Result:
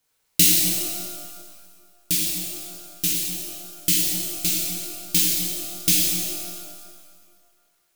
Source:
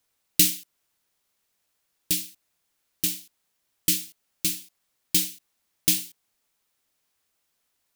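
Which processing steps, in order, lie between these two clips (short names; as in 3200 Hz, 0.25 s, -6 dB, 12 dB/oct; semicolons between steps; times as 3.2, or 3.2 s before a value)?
shimmer reverb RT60 1.8 s, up +12 st, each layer -8 dB, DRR -4.5 dB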